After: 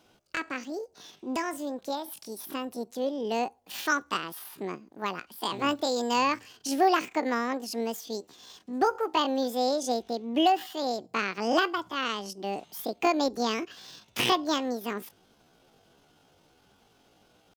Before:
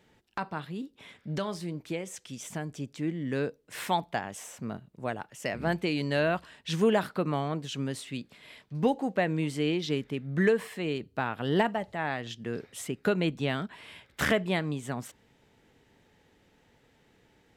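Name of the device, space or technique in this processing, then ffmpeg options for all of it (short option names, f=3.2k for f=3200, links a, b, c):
chipmunk voice: -af "asetrate=74167,aresample=44100,atempo=0.594604,volume=1.5dB"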